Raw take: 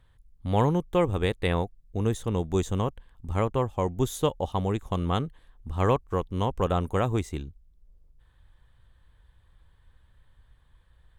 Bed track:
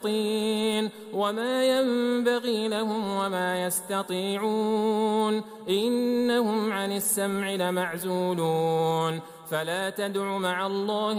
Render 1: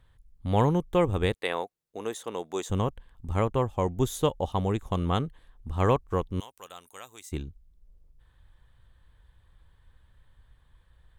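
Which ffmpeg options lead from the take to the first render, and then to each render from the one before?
-filter_complex "[0:a]asettb=1/sr,asplit=3[a][b][c];[a]atrim=end=1.344[d];[b]atrim=start=1.34:end=2.7,asetpts=PTS-STARTPTS,afade=t=in:d=0.004:c=qsin,afade=t=out:st=1.356:d=0.004:c=qsin,highpass=460[e];[c]atrim=start=2.696[f];[d][e]acrossfade=d=0.004:c1=hsin:c2=qsin[g];[g][f]acrossfade=d=0.004:c1=qsin:c2=hsin,asettb=1/sr,asplit=3[h][i][j];[h]atrim=end=6.404[k];[i]atrim=start=6.4:end=7.32,asetpts=PTS-STARTPTS,afade=t=in:d=0.004:c=qsin,afade=t=out:st=0.916:d=0.004:c=qsin,aderivative[l];[j]atrim=start=7.316[m];[k][l]acrossfade=d=0.004:c1=hsin:c2=qsin[n];[n][m]acrossfade=d=0.004:c1=qsin:c2=hsin"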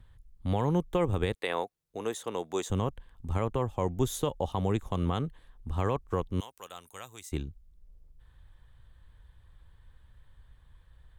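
-filter_complex "[0:a]acrossover=split=140|1900[a][b][c];[a]acompressor=mode=upward:threshold=-48dB:ratio=2.5[d];[d][b][c]amix=inputs=3:normalize=0,alimiter=limit=-16.5dB:level=0:latency=1:release=76"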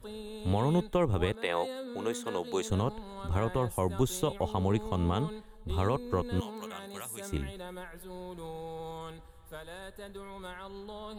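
-filter_complex "[1:a]volume=-16.5dB[a];[0:a][a]amix=inputs=2:normalize=0"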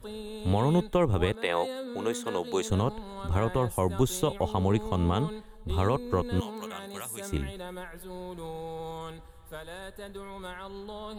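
-af "volume=3dB"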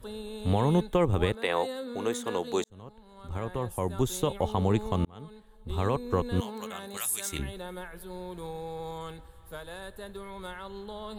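-filter_complex "[0:a]asettb=1/sr,asplit=3[a][b][c];[a]atrim=end=6.974[d];[b]atrim=start=6.97:end=7.39,asetpts=PTS-STARTPTS,afade=t=in:d=0.004:c=qsin,afade=t=out:st=0.416:d=0.004:c=qsin,tiltshelf=f=1.2k:g=-9[e];[c]atrim=start=7.386[f];[d][e]acrossfade=d=0.004:c1=hsin:c2=qsin[g];[g][f]acrossfade=d=0.004:c1=qsin:c2=hsin,asplit=3[h][i][j];[h]atrim=end=2.64,asetpts=PTS-STARTPTS,afade=t=out:st=2.636:d=0.004:c=hsin[k];[i]atrim=start=2.64:end=5.05,asetpts=PTS-STARTPTS,afade=t=in:d=1.8,afade=t=out:st=2.406:d=0.004:c=hsin[l];[j]atrim=start=5.05,asetpts=PTS-STARTPTS,afade=t=in:d=1.01[m];[k][l][m]concat=n=3:v=0:a=1"

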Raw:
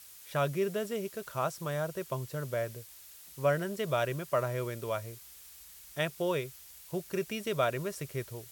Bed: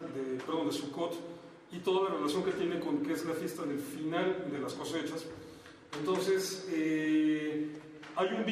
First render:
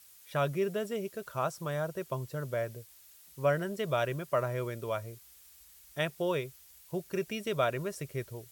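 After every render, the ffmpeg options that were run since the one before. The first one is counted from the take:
-af "afftdn=nr=6:nf=-52"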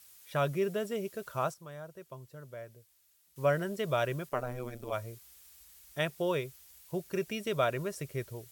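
-filter_complex "[0:a]asplit=3[a][b][c];[a]afade=t=out:st=4.28:d=0.02[d];[b]tremolo=f=130:d=0.947,afade=t=in:st=4.28:d=0.02,afade=t=out:st=4.92:d=0.02[e];[c]afade=t=in:st=4.92:d=0.02[f];[d][e][f]amix=inputs=3:normalize=0,asplit=3[g][h][i];[g]atrim=end=1.54,asetpts=PTS-STARTPTS,afade=t=out:st=1.42:d=0.12:c=log:silence=0.266073[j];[h]atrim=start=1.54:end=3.36,asetpts=PTS-STARTPTS,volume=-11.5dB[k];[i]atrim=start=3.36,asetpts=PTS-STARTPTS,afade=t=in:d=0.12:c=log:silence=0.266073[l];[j][k][l]concat=n=3:v=0:a=1"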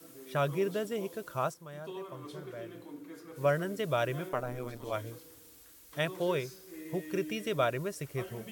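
-filter_complex "[1:a]volume=-13.5dB[a];[0:a][a]amix=inputs=2:normalize=0"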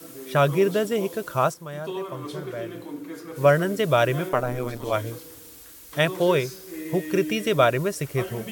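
-af "volume=10.5dB"

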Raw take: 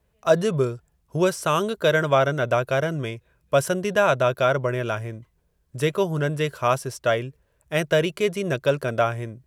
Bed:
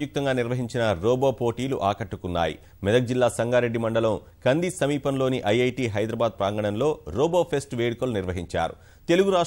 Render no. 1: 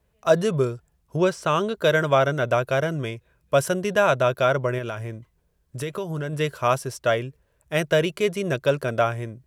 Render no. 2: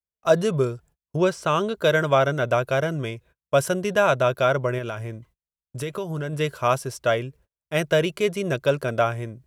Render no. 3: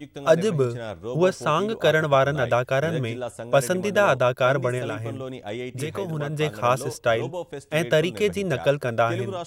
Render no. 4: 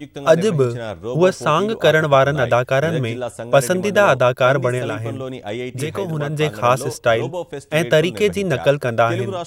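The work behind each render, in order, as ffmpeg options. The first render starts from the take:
-filter_complex "[0:a]asettb=1/sr,asplit=3[a][b][c];[a]atrim=end=1.164[d];[b]atrim=start=1.16:end=1.77,asetpts=PTS-STARTPTS,afade=t=in:d=0.004:c=qsin,afade=t=out:st=0.606:d=0.004:c=qsin,equalizer=f=12k:w=0.73:g=-14[e];[c]atrim=start=1.766[f];[d][e]acrossfade=d=0.004:c1=hsin:c2=qsin[g];[g][f]acrossfade=d=0.004:c1=qsin:c2=hsin,asettb=1/sr,asplit=3[h][i][j];[h]atrim=end=4.784[k];[i]atrim=start=4.78:end=6.33,asetpts=PTS-STARTPTS,afade=t=in:d=0.004:c=qsin,afade=t=out:st=1.546:d=0.004:c=qsin,acompressor=threshold=-26dB:ratio=4:attack=3.2:release=140:knee=1:detection=peak[l];[j]atrim=start=6.326[m];[k][l]acrossfade=d=0.004:c1=hsin:c2=qsin[n];[n][m]acrossfade=d=0.004:c1=qsin:c2=hsin"
-af "agate=range=-35dB:threshold=-51dB:ratio=16:detection=peak,bandreject=f=1.8k:w=20"
-filter_complex "[1:a]volume=-10.5dB[a];[0:a][a]amix=inputs=2:normalize=0"
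-af "volume=5.5dB,alimiter=limit=-1dB:level=0:latency=1"

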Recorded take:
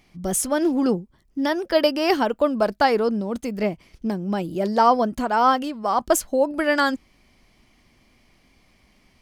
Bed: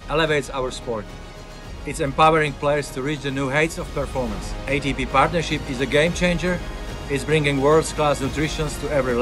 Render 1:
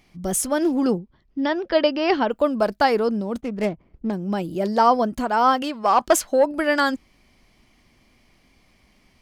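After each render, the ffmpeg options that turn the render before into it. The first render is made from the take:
-filter_complex "[0:a]asettb=1/sr,asplit=3[a][b][c];[a]atrim=end=0.984[d];[b]atrim=start=0.98:end=2.31,asetpts=PTS-STARTPTS,afade=t=in:d=0.004:c=qsin,afade=t=out:st=1.326:d=0.004:c=qsin,lowpass=f=4.5k:w=0.5412,lowpass=f=4.5k:w=1.3066[e];[c]atrim=start=2.306[f];[d][e]acrossfade=d=0.004:c1=hsin:c2=qsin[g];[g][f]acrossfade=d=0.004:c1=qsin:c2=hsin,asplit=3[h][i][j];[h]afade=t=out:st=3.4:d=0.02[k];[i]adynamicsmooth=sensitivity=6:basefreq=810,afade=t=in:st=3.4:d=0.02,afade=t=out:st=4.12:d=0.02[l];[j]afade=t=in:st=4.12:d=0.02[m];[k][l][m]amix=inputs=3:normalize=0,asettb=1/sr,asplit=3[n][o][p];[n]atrim=end=5.624[q];[o]atrim=start=5.62:end=6.45,asetpts=PTS-STARTPTS,afade=t=in:d=0.004:c=qsin,afade=t=out:st=0.826:d=0.004:c=qsin,asplit=2[r][s];[s]highpass=f=720:p=1,volume=12dB,asoftclip=type=tanh:threshold=-5dB[t];[r][t]amix=inputs=2:normalize=0,lowpass=f=4.9k:p=1,volume=-6dB[u];[p]atrim=start=6.446[v];[q][u]acrossfade=d=0.004:c1=hsin:c2=qsin[w];[w][v]acrossfade=d=0.004:c1=qsin:c2=hsin"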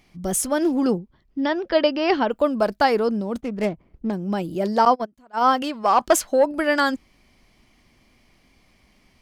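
-filter_complex "[0:a]asettb=1/sr,asplit=3[a][b][c];[a]atrim=end=4.854[d];[b]atrim=start=4.85:end=5.52,asetpts=PTS-STARTPTS,afade=t=in:d=0.004:c=qsin,afade=t=out:st=0.666:d=0.004:c=qsin,agate=range=-28dB:threshold=-19dB:ratio=16:release=100:detection=peak[e];[c]atrim=start=5.516[f];[d][e]acrossfade=d=0.004:c1=hsin:c2=qsin[g];[g][f]acrossfade=d=0.004:c1=qsin:c2=hsin"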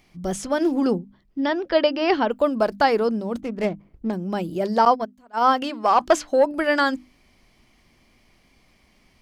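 -filter_complex "[0:a]bandreject=f=50:t=h:w=6,bandreject=f=100:t=h:w=6,bandreject=f=150:t=h:w=6,bandreject=f=200:t=h:w=6,bandreject=f=250:t=h:w=6,bandreject=f=300:t=h:w=6,acrossover=split=6400[a][b];[b]acompressor=threshold=-49dB:ratio=4:attack=1:release=60[c];[a][c]amix=inputs=2:normalize=0"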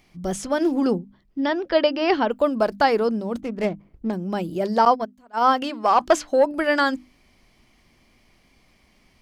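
-af anull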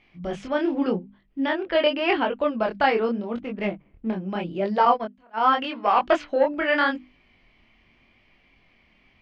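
-af "flanger=delay=19.5:depth=7.6:speed=0.84,lowpass=f=2.7k:t=q:w=2.1"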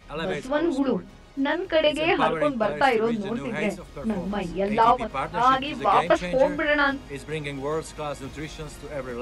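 -filter_complex "[1:a]volume=-12dB[a];[0:a][a]amix=inputs=2:normalize=0"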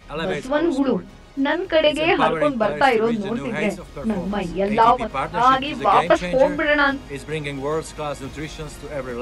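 -af "volume=4dB,alimiter=limit=-3dB:level=0:latency=1"

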